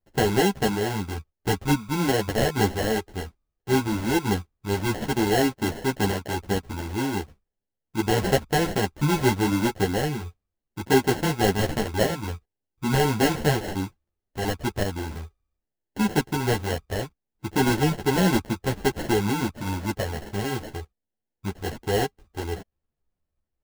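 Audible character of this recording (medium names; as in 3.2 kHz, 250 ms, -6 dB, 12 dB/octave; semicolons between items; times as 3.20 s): aliases and images of a low sample rate 1.2 kHz, jitter 0%; a shimmering, thickened sound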